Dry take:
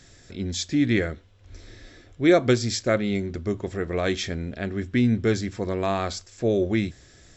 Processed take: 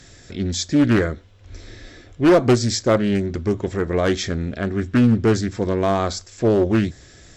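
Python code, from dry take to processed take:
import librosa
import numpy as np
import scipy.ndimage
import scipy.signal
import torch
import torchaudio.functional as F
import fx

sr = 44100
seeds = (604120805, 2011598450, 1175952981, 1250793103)

y = fx.clip_asym(x, sr, top_db=-17.0, bottom_db=-11.5)
y = fx.dynamic_eq(y, sr, hz=2700.0, q=1.9, threshold_db=-47.0, ratio=4.0, max_db=-7)
y = fx.doppler_dist(y, sr, depth_ms=0.39)
y = F.gain(torch.from_numpy(y), 6.0).numpy()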